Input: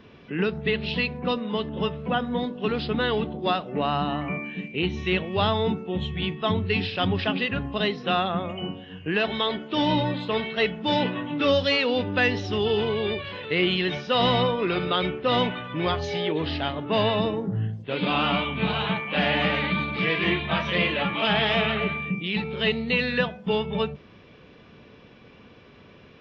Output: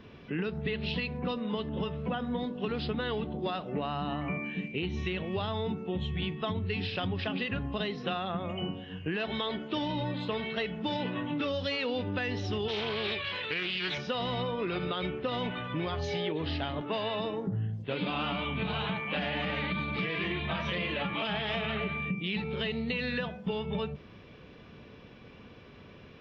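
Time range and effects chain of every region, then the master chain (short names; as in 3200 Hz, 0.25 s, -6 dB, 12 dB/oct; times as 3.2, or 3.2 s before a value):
12.68–13.98 tilt shelf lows -6.5 dB, about 820 Hz + Doppler distortion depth 0.27 ms
16.81–17.47 HPF 360 Hz 6 dB/oct + upward compressor, threshold -32 dBFS
whole clip: low shelf 120 Hz +5 dB; limiter -15.5 dBFS; compressor, threshold -27 dBFS; gain -2 dB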